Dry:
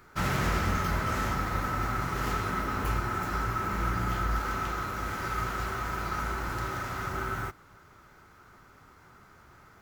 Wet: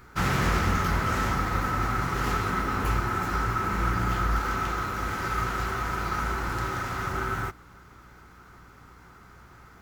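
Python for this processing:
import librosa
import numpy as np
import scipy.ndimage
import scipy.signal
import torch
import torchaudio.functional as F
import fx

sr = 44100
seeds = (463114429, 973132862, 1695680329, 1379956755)

y = fx.add_hum(x, sr, base_hz=60, snr_db=28)
y = fx.notch(y, sr, hz=610.0, q=12.0)
y = fx.doppler_dist(y, sr, depth_ms=0.17)
y = y * librosa.db_to_amplitude(3.5)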